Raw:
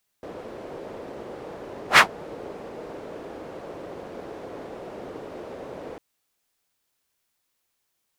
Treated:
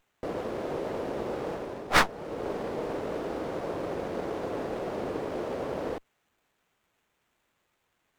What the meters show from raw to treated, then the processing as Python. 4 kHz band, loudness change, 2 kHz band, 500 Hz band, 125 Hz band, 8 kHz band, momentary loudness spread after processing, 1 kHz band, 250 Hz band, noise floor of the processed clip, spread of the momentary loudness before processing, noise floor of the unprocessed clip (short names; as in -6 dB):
-6.5 dB, -3.5 dB, -7.5 dB, +3.5 dB, +4.0 dB, -5.0 dB, 10 LU, -3.5 dB, +4.5 dB, -76 dBFS, 20 LU, -76 dBFS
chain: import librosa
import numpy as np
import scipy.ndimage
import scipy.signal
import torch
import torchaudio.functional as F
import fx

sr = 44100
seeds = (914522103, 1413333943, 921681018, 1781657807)

y = fx.rider(x, sr, range_db=5, speed_s=0.5)
y = fx.running_max(y, sr, window=9)